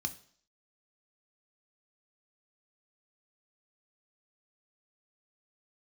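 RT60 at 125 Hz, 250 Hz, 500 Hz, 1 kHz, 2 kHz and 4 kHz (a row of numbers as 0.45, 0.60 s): 0.45, 0.55, 0.55, 0.55, 0.55, 0.65 s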